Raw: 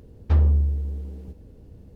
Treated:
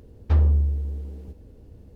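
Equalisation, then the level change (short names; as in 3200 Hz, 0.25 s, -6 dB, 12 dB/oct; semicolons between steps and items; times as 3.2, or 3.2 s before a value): bell 160 Hz -4.5 dB 0.64 oct; 0.0 dB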